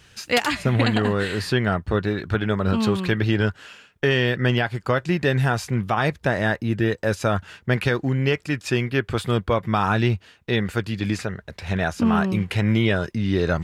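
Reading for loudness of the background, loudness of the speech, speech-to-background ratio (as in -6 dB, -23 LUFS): -32.5 LUFS, -22.5 LUFS, 10.0 dB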